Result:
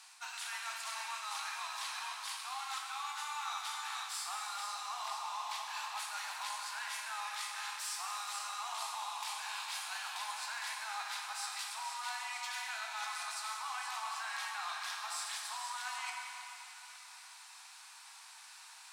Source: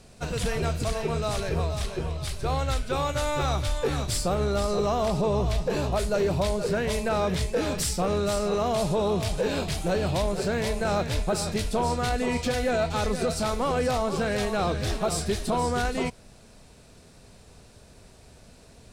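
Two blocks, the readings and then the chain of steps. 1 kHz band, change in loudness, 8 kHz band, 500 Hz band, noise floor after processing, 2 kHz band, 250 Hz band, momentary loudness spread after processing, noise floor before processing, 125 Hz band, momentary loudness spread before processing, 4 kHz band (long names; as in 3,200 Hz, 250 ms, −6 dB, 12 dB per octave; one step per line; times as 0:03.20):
−9.0 dB, −12.5 dB, −6.5 dB, −35.5 dB, −54 dBFS, −6.0 dB, below −40 dB, 11 LU, −52 dBFS, below −40 dB, 3 LU, −6.0 dB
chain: Butterworth high-pass 830 Hz 72 dB per octave
reversed playback
downward compressor 6 to 1, threshold −43 dBFS, peak gain reduction 16 dB
reversed playback
dense smooth reverb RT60 3.5 s, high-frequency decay 0.95×, DRR −0.5 dB
level +1.5 dB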